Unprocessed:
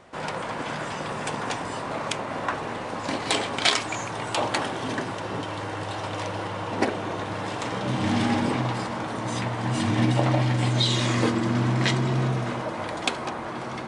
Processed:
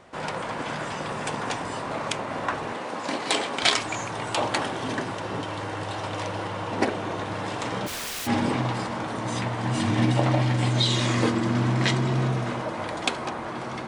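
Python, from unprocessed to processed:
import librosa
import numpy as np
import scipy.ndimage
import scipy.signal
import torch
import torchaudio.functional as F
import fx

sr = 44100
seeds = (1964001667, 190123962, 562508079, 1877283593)

y = fx.highpass(x, sr, hz=200.0, slope=12, at=(2.72, 3.63))
y = fx.overflow_wrap(y, sr, gain_db=28.0, at=(7.86, 8.26), fade=0.02)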